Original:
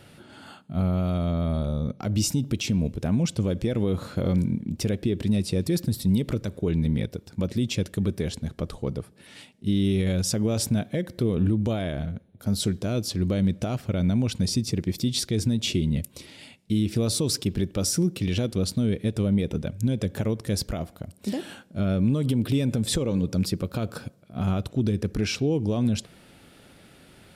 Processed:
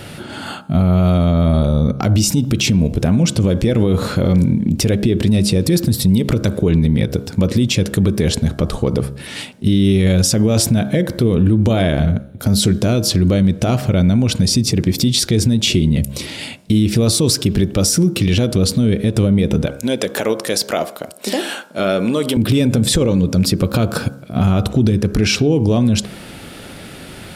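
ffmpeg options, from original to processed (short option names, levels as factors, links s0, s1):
-filter_complex "[0:a]asettb=1/sr,asplit=3[s0][s1][s2];[s0]atrim=end=19.664[s3];[s1]atrim=start=19.66:end=22.37,asetpts=PTS-STARTPTS,afade=t=in:d=0.004:c=qsin,afade=t=out:st=2.706:d=0.004:c=qsin,highpass=450[s4];[s2]atrim=start=22.366[s5];[s3][s4]acrossfade=d=0.004:c1=hsin:c2=qsin[s6];[s6][s5]acrossfade=d=0.004:c1=qsin:c2=hsin,bandreject=f=68.21:t=h:w=4,bandreject=f=136.42:t=h:w=4,bandreject=f=204.63:t=h:w=4,bandreject=f=272.84:t=h:w=4,bandreject=f=341.05:t=h:w=4,bandreject=f=409.26:t=h:w=4,bandreject=f=477.47:t=h:w=4,bandreject=f=545.68:t=h:w=4,bandreject=f=613.89:t=h:w=4,bandreject=f=682.1:t=h:w=4,bandreject=f=750.31:t=h:w=4,bandreject=f=818.52:t=h:w=4,bandreject=f=886.73:t=h:w=4,bandreject=f=954.94:t=h:w=4,bandreject=f=1023.15:t=h:w=4,bandreject=f=1091.36:t=h:w=4,bandreject=f=1159.57:t=h:w=4,bandreject=f=1227.78:t=h:w=4,bandreject=f=1295.99:t=h:w=4,bandreject=f=1364.2:t=h:w=4,bandreject=f=1432.41:t=h:w=4,bandreject=f=1500.62:t=h:w=4,bandreject=f=1568.83:t=h:w=4,bandreject=f=1637.04:t=h:w=4,acompressor=threshold=0.0398:ratio=3,alimiter=level_in=14.1:limit=0.891:release=50:level=0:latency=1,volume=0.562"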